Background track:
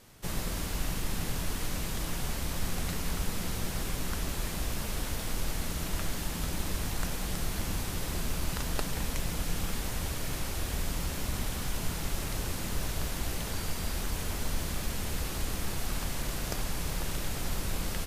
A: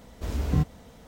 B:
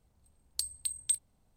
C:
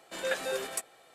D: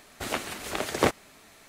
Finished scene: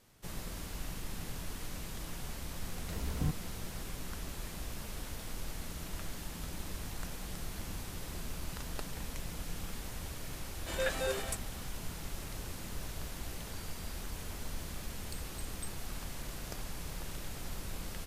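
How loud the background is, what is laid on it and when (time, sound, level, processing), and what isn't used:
background track −8.5 dB
0:02.68: mix in A −10 dB
0:10.55: mix in C −1.5 dB + brickwall limiter −19.5 dBFS
0:14.53: mix in B −17 dB
not used: D

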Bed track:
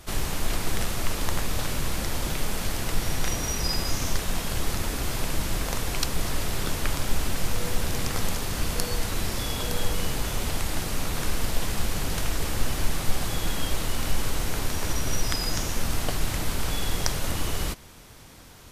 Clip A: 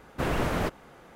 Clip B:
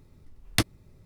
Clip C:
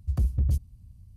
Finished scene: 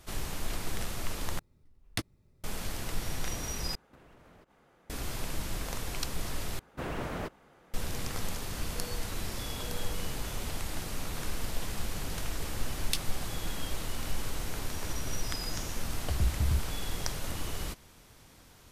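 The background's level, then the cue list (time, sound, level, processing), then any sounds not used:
bed track −8 dB
0:01.39: overwrite with B −10.5 dB
0:03.75: overwrite with A −12.5 dB + downward compressor 20 to 1, threshold −40 dBFS
0:06.59: overwrite with A −8.5 dB
0:12.35: mix in B −5 dB + Butterworth high-pass 2,500 Hz
0:16.02: mix in C −4.5 dB

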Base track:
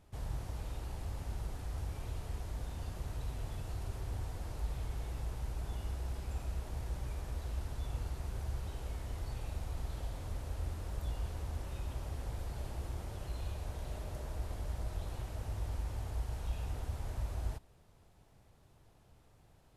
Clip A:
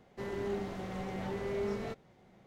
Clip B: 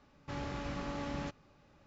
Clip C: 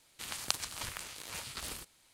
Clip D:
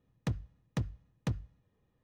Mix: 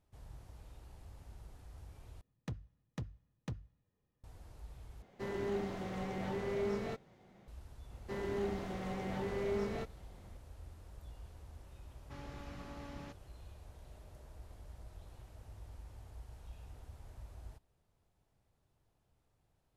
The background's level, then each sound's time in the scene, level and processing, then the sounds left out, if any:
base track −13 dB
0:02.21: overwrite with D −8.5 dB
0:05.02: overwrite with A −1 dB
0:07.91: mix in A −1 dB
0:11.82: mix in B −10 dB
not used: C

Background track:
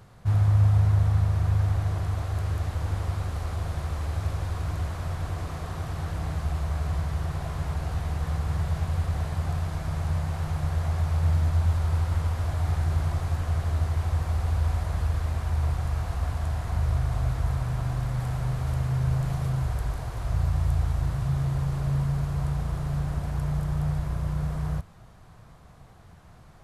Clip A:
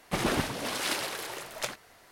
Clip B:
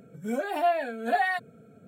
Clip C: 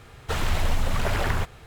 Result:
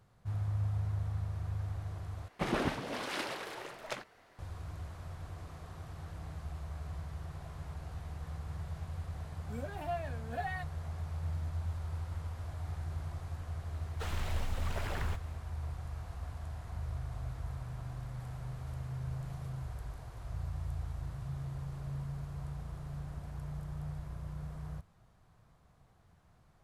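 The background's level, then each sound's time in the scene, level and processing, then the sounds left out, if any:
background track −14 dB
0:02.28: overwrite with A −3.5 dB + low-pass filter 2,300 Hz 6 dB per octave
0:09.25: mix in B −13.5 dB
0:13.71: mix in C −13 dB

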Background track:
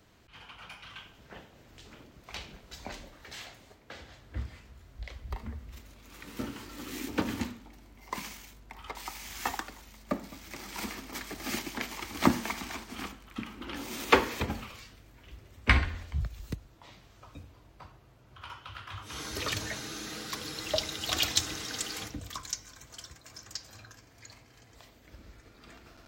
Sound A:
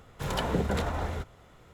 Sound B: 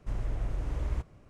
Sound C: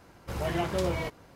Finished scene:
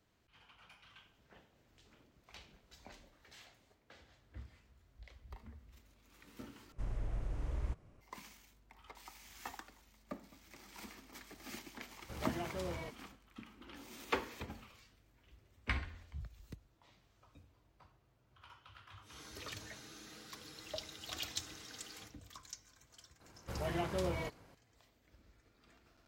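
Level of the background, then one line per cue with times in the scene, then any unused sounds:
background track −14 dB
0:06.72: overwrite with B −6.5 dB
0:11.81: mix in C −12.5 dB
0:23.20: mix in C −7.5 dB
not used: A

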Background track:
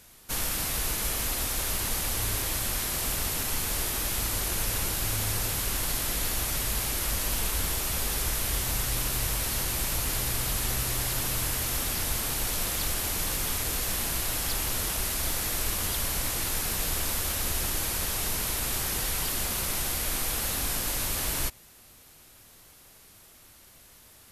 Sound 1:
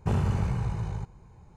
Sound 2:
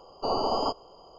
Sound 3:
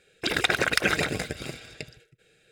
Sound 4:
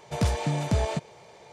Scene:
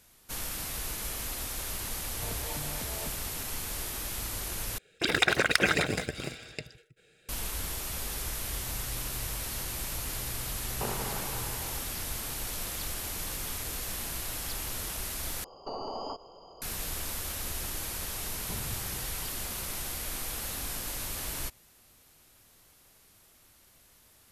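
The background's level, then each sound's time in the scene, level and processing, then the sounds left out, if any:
background track −6.5 dB
0:02.10: mix in 4 −9 dB + downward compressor, threshold −29 dBFS
0:04.78: overwrite with 3 −1 dB
0:10.74: mix in 1 + high-pass filter 380 Hz
0:15.44: overwrite with 2 + downward compressor, threshold −34 dBFS
0:18.43: mix in 1 −10.5 dB + spectral dynamics exaggerated over time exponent 3

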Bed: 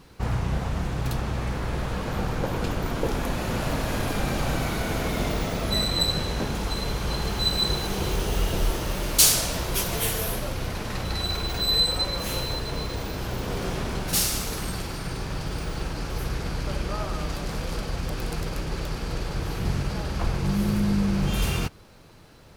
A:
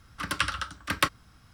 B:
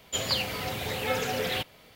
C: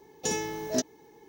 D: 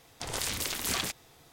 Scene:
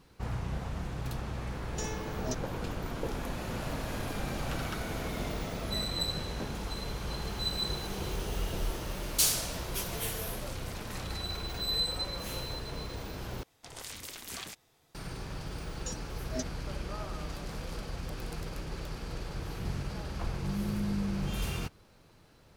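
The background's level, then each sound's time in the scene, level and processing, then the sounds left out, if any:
bed −9 dB
0:01.53: mix in C −9 dB
0:04.11: mix in A −3.5 dB + volume swells 577 ms
0:10.06: mix in D −17.5 dB
0:13.43: overwrite with D −10.5 dB
0:15.61: mix in C −8 dB + noise reduction from a noise print of the clip's start 17 dB
not used: B

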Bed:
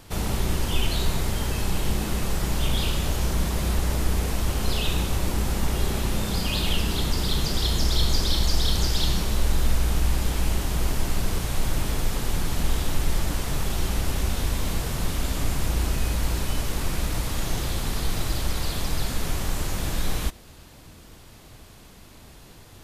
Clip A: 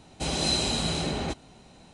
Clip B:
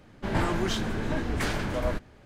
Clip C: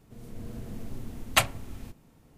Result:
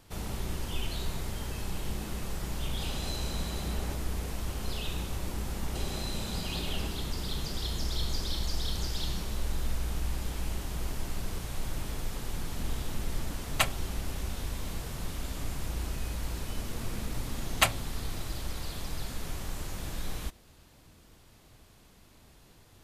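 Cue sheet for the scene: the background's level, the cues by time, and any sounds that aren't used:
bed −10 dB
0:02.61: mix in A −5 dB + downward compressor 2 to 1, threshold −40 dBFS
0:05.55: mix in A −4 dB + downward compressor, threshold −34 dBFS
0:12.23: mix in C −5 dB
0:16.25: mix in C −2 dB
not used: B

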